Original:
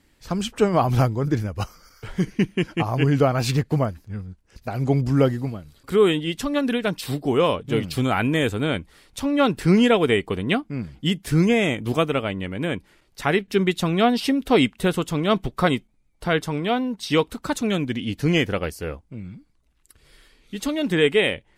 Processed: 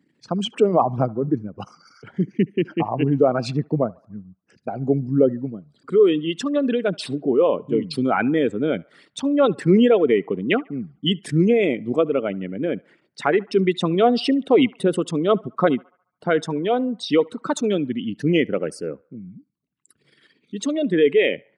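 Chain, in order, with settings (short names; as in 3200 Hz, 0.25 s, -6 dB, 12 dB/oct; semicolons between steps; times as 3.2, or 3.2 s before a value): formant sharpening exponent 2; HPF 160 Hz 24 dB/oct; on a send: narrowing echo 71 ms, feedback 53%, band-pass 1100 Hz, level -23 dB; on the sum: downsampling 22050 Hz; gain +2 dB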